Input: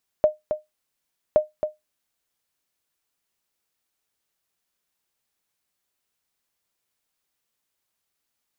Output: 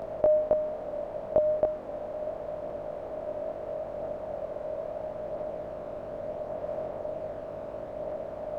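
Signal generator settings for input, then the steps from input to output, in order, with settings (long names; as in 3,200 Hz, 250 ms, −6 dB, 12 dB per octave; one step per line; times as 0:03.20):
ping with an echo 612 Hz, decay 0.17 s, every 1.12 s, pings 2, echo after 0.27 s, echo −8 dB −8 dBFS
compressor on every frequency bin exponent 0.2
multi-voice chorus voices 2, 0.37 Hz, delay 20 ms, depth 2.2 ms
high-shelf EQ 2,000 Hz −8.5 dB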